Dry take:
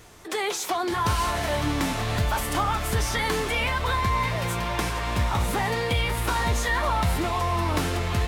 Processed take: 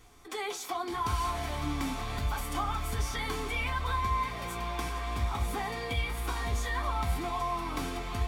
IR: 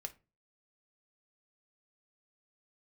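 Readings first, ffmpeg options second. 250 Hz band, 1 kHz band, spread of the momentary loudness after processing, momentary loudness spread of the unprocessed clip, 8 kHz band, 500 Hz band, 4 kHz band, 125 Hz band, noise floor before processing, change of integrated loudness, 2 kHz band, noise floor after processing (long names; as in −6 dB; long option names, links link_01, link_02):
−8.5 dB, −6.5 dB, 4 LU, 3 LU, −9.5 dB, −10.0 dB, −9.0 dB, −8.5 dB, −31 dBFS, −8.0 dB, −9.0 dB, −40 dBFS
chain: -filter_complex "[1:a]atrim=start_sample=2205,asetrate=74970,aresample=44100[link_01];[0:a][link_01]afir=irnorm=-1:irlink=0,volume=-1dB"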